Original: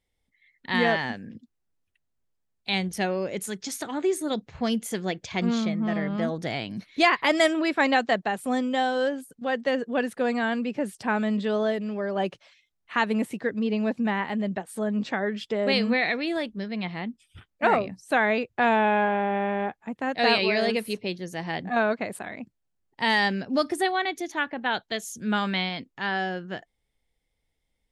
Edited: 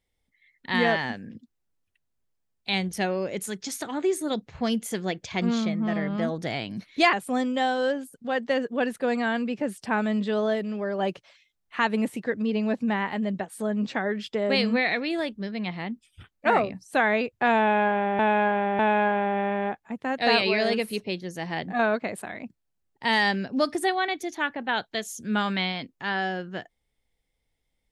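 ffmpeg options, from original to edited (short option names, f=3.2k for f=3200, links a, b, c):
-filter_complex "[0:a]asplit=4[a][b][c][d];[a]atrim=end=7.132[e];[b]atrim=start=8.298:end=19.362[f];[c]atrim=start=18.758:end=19.362[g];[d]atrim=start=18.758[h];[e][f]acrossfade=d=0.004:c1=hsin:c2=hsin[i];[i][g]acrossfade=d=0.004:c1=hsin:c2=hsin[j];[j][h]acrossfade=d=0.004:c1=hsin:c2=hsin"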